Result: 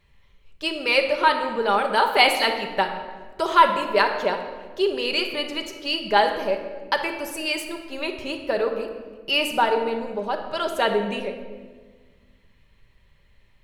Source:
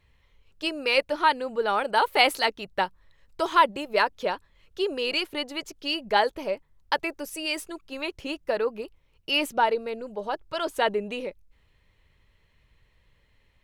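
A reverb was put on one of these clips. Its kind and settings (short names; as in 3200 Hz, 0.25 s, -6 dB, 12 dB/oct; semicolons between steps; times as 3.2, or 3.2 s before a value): shoebox room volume 1500 m³, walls mixed, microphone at 1.2 m; gain +2 dB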